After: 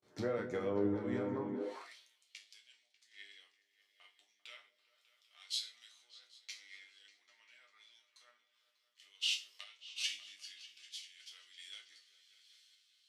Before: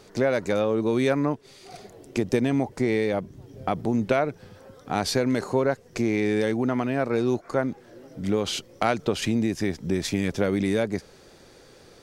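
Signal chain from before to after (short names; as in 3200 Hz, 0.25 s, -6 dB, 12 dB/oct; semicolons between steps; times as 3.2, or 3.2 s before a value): gate with hold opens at -42 dBFS; low shelf 310 Hz -4.5 dB; compressor 2.5:1, threshold -37 dBFS, peak gain reduction 13 dB; resonator bank A2 minor, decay 0.3 s; random-step tremolo; repeats that get brighter 0.182 s, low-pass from 400 Hz, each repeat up 2 oct, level -6 dB; high-pass sweep 69 Hz -> 3300 Hz, 1.26–1.81; speed mistake 48 kHz file played as 44.1 kHz; three-band expander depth 70%; gain +6 dB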